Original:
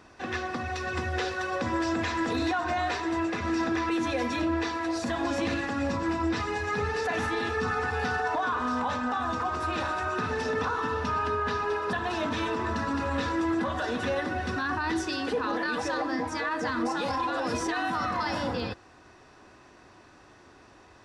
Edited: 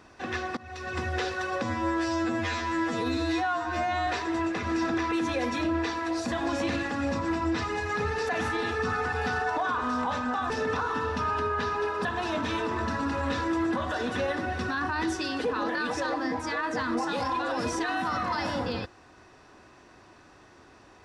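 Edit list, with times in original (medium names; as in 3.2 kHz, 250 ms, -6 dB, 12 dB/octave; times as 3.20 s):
0.57–1.02 s: fade in, from -19.5 dB
1.63–2.85 s: stretch 2×
9.28–10.38 s: delete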